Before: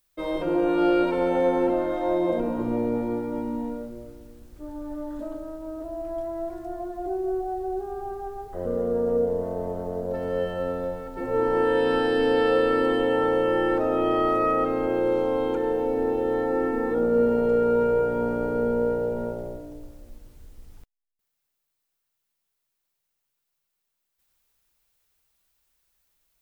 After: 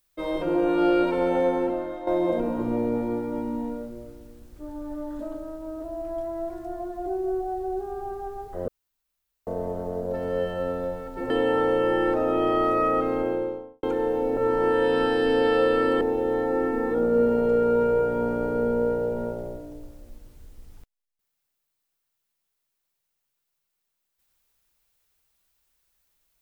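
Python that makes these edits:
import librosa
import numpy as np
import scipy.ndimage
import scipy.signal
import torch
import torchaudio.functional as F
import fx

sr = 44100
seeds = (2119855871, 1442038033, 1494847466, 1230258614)

y = fx.studio_fade_out(x, sr, start_s=14.75, length_s=0.72)
y = fx.edit(y, sr, fx.fade_out_to(start_s=1.36, length_s=0.71, floor_db=-10.0),
    fx.room_tone_fill(start_s=8.68, length_s=0.79),
    fx.move(start_s=11.3, length_s=1.64, to_s=16.01), tone=tone)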